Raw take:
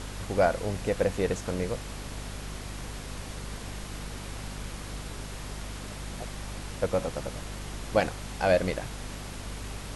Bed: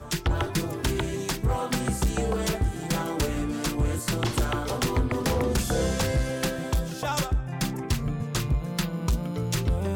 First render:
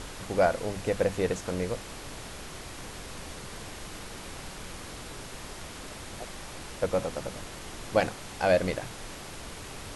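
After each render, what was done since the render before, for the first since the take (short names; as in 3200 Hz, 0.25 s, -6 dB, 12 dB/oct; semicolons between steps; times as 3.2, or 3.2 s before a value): notches 50/100/150/200/250 Hz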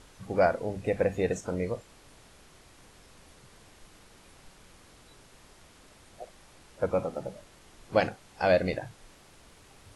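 noise print and reduce 14 dB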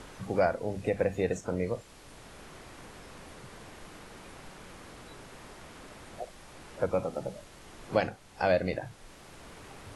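three-band squash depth 40%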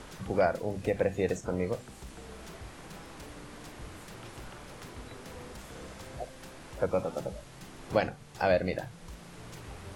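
add bed -22.5 dB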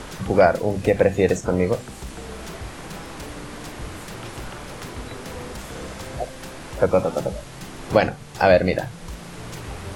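gain +11 dB; limiter -2 dBFS, peak gain reduction 2 dB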